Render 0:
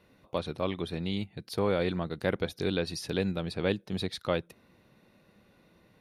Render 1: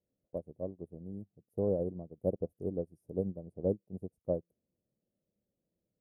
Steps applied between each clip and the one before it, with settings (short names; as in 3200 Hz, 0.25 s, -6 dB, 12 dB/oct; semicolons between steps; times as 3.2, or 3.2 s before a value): elliptic band-stop 620–9000 Hz, stop band 50 dB; bell 9000 Hz -10.5 dB 0.75 oct; upward expander 2.5:1, over -41 dBFS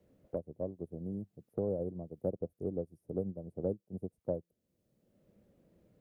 three-band squash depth 70%; gain -1.5 dB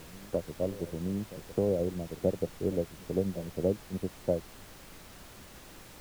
added noise pink -56 dBFS; reverse echo 0.931 s -18 dB; gain +6 dB